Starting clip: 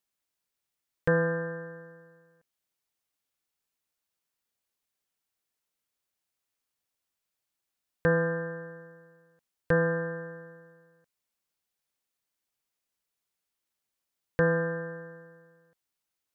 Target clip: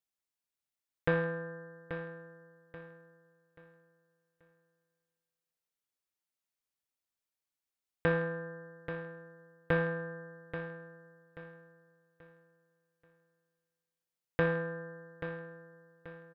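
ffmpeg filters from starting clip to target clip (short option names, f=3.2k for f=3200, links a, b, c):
-af "aeval=exprs='0.266*(cos(1*acos(clip(val(0)/0.266,-1,1)))-cos(1*PI/2))+0.0211*(cos(2*acos(clip(val(0)/0.266,-1,1)))-cos(2*PI/2))+0.0531*(cos(3*acos(clip(val(0)/0.266,-1,1)))-cos(3*PI/2))+0.00531*(cos(4*acos(clip(val(0)/0.266,-1,1)))-cos(4*PI/2))':c=same,aecho=1:1:833|1666|2499|3332:0.316|0.108|0.0366|0.0124"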